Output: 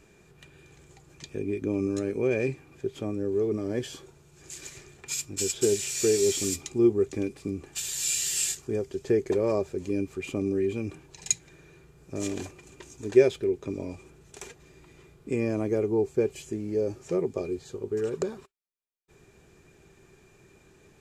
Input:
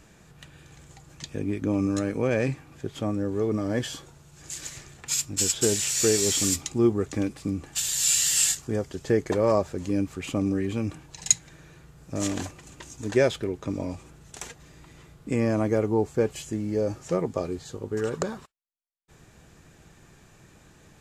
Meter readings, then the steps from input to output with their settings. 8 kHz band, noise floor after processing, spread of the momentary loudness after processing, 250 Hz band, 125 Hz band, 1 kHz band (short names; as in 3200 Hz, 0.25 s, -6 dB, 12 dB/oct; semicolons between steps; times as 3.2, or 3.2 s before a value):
-5.5 dB, -59 dBFS, 17 LU, -2.5 dB, -5.5 dB, -8.0 dB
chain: small resonant body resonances 390/2400 Hz, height 13 dB, ringing for 55 ms; dynamic EQ 1200 Hz, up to -4 dB, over -36 dBFS, Q 0.91; gain -5.5 dB